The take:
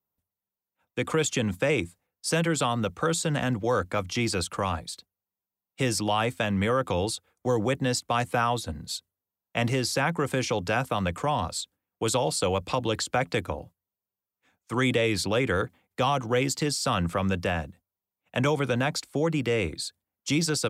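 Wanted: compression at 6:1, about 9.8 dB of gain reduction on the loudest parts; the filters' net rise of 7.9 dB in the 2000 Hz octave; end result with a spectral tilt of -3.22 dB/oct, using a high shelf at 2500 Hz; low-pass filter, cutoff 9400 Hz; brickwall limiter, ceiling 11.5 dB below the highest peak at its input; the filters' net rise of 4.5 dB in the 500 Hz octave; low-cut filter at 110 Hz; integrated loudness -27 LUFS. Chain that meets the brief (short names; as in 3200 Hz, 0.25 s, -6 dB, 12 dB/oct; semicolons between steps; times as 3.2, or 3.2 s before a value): HPF 110 Hz; LPF 9400 Hz; bell 500 Hz +4.5 dB; bell 2000 Hz +8 dB; high shelf 2500 Hz +4 dB; compressor 6:1, threshold -27 dBFS; gain +5.5 dB; limiter -15.5 dBFS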